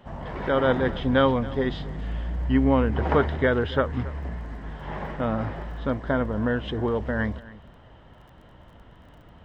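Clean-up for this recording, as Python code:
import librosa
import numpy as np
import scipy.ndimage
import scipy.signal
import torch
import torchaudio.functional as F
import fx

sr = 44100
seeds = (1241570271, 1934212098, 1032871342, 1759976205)

y = fx.fix_declick_ar(x, sr, threshold=6.5)
y = fx.fix_echo_inverse(y, sr, delay_ms=274, level_db=-19.0)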